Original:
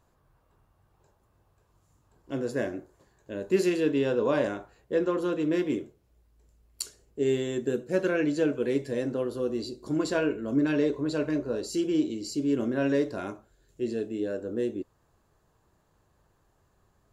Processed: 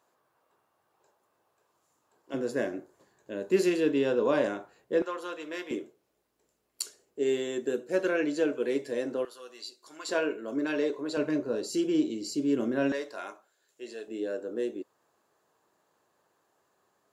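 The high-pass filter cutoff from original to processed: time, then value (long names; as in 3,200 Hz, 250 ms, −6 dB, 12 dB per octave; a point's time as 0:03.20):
390 Hz
from 0:02.34 190 Hz
from 0:05.02 760 Hz
from 0:05.71 310 Hz
from 0:09.25 1,300 Hz
from 0:10.09 390 Hz
from 0:11.17 180 Hz
from 0:12.92 710 Hz
from 0:14.08 340 Hz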